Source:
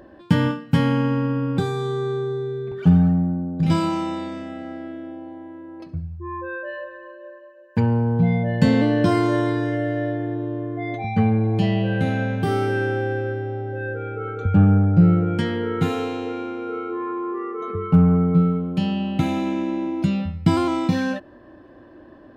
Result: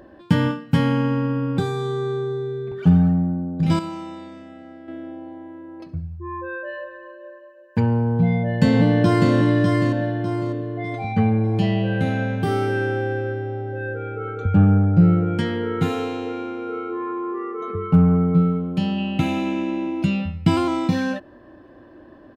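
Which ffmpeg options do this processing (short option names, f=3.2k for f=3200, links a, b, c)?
-filter_complex "[0:a]asplit=2[a][b];[b]afade=t=in:st=8.14:d=0.01,afade=t=out:st=9.32:d=0.01,aecho=0:1:600|1200|1800|2400|3000:0.668344|0.23392|0.0818721|0.0286552|0.0100293[c];[a][c]amix=inputs=2:normalize=0,asettb=1/sr,asplit=3[d][e][f];[d]atrim=end=18.984[g];[e]atrim=start=18.98:end=20.6,asetpts=PTS-STARTPTS,afade=t=in:d=0.004:c=qsin,afade=t=out:st=1.616:d=0.004:c=qsin,equalizer=f=2.7k:t=o:w=0.28:g=8[h];[f]atrim=start=20.596[i];[g][h]acrossfade=d=0.004:c1=hsin:c2=qsin[j];[j][i]acrossfade=d=0.004:c1=qsin:c2=hsin,asplit=3[k][l][m];[k]atrim=end=3.792[n];[l]atrim=start=3.788:end=4.882,asetpts=PTS-STARTPTS,volume=-8dB[o];[m]atrim=start=4.878[p];[n][o]acrossfade=d=0.004:c1=hsin:c2=hsin[q];[q][p]acrossfade=d=0.004:c1=hsin:c2=hsin"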